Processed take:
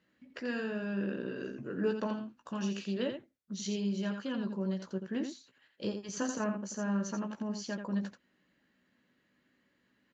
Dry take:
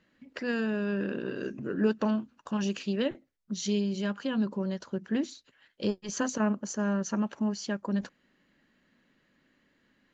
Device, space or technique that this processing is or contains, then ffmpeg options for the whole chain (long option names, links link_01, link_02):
slapback doubling: -filter_complex "[0:a]asplit=3[link_01][link_02][link_03];[link_02]adelay=16,volume=-6.5dB[link_04];[link_03]adelay=85,volume=-7dB[link_05];[link_01][link_04][link_05]amix=inputs=3:normalize=0,highpass=56,volume=-6dB"